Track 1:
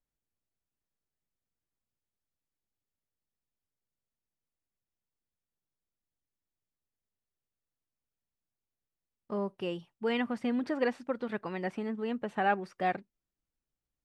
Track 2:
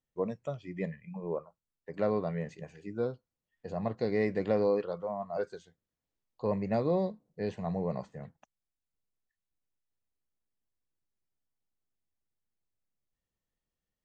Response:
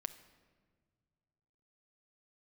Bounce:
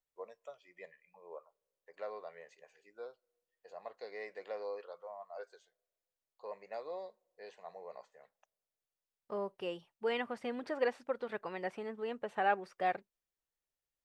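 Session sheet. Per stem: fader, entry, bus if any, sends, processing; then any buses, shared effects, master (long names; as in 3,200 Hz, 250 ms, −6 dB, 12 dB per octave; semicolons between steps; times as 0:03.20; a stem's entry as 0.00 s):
−3.5 dB, 0.00 s, no send, no processing
−9.0 dB, 0.00 s, send −19 dB, Bessel high-pass filter 760 Hz, order 2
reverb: on, pre-delay 6 ms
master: low shelf with overshoot 350 Hz −7 dB, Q 1.5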